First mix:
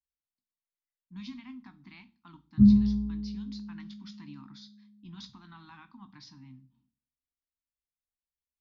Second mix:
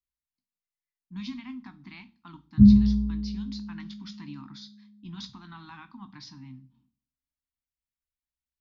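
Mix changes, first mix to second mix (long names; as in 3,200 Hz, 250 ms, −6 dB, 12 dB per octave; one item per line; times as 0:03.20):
speech +5.5 dB
background: add low-shelf EQ 160 Hz +9 dB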